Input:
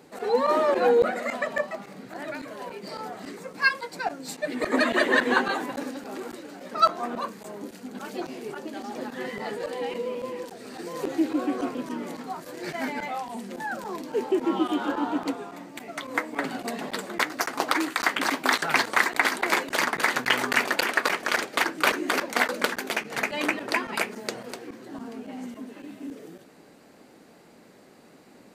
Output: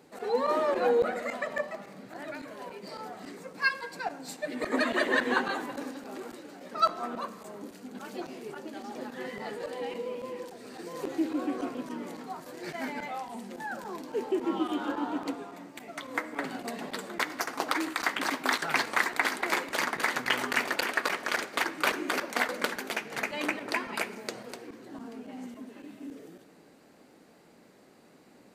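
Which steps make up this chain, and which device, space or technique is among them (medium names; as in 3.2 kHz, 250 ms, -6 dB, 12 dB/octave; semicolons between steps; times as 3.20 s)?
saturated reverb return (on a send at -14 dB: reverberation RT60 1.4 s, pre-delay 50 ms + saturation -17.5 dBFS, distortion -17 dB); on the sum: trim -5 dB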